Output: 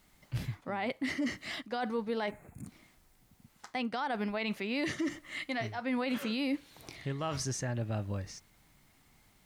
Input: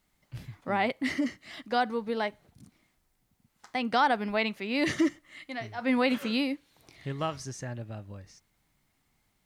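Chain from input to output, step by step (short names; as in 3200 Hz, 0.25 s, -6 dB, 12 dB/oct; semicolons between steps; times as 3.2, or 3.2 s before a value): spectral gain 2.31–2.67, 2700–6500 Hz -16 dB; reverse; compressor 6:1, threshold -37 dBFS, peak gain reduction 16.5 dB; reverse; limiter -33 dBFS, peak gain reduction 6.5 dB; gain +8 dB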